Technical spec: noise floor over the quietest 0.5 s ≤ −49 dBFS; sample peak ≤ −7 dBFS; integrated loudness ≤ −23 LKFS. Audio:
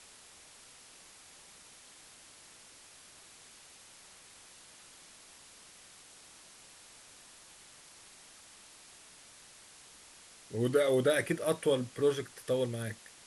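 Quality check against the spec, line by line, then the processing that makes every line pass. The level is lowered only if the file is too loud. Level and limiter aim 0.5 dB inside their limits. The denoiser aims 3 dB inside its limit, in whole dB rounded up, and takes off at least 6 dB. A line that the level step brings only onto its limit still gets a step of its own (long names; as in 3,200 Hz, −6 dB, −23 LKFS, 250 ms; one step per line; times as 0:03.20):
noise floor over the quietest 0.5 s −56 dBFS: in spec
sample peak −16.5 dBFS: in spec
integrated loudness −31.5 LKFS: in spec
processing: no processing needed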